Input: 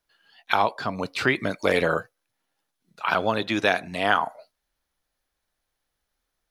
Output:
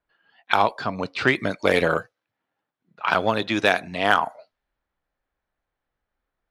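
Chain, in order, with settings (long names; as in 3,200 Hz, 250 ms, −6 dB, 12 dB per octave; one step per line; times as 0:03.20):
harmonic generator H 5 −29 dB, 7 −26 dB, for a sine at −4 dBFS
low-pass that shuts in the quiet parts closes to 2,000 Hz, open at −19.5 dBFS
level +2.5 dB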